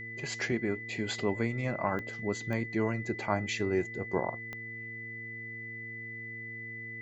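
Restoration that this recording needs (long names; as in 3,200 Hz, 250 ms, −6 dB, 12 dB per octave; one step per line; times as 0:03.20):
click removal
hum removal 113.8 Hz, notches 4
notch filter 2,000 Hz, Q 30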